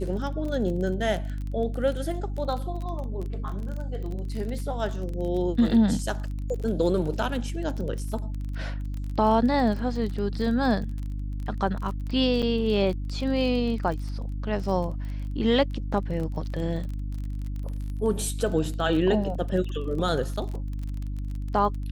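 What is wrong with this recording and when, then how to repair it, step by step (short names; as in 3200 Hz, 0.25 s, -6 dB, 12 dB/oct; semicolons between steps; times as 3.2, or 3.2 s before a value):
crackle 25/s -32 dBFS
hum 50 Hz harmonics 6 -31 dBFS
12.42–12.43 gap 6.1 ms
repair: de-click; de-hum 50 Hz, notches 6; interpolate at 12.42, 6.1 ms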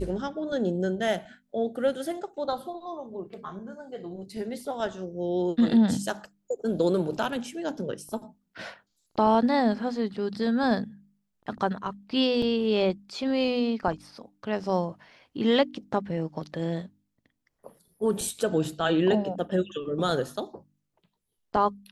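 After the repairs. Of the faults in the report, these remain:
none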